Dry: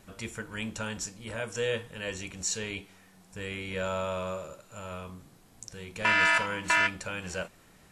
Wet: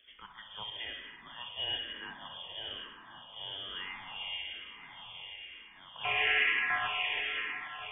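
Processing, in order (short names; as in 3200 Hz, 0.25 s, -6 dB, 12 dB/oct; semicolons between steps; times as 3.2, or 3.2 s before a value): painted sound noise, 6.03–7.07, 410–1600 Hz -26 dBFS; swung echo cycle 1.444 s, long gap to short 3:1, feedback 47%, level -12 dB; spring tank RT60 2.6 s, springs 52/59 ms, chirp 50 ms, DRR 1.5 dB; inverted band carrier 3400 Hz; endless phaser -1.1 Hz; gain -6 dB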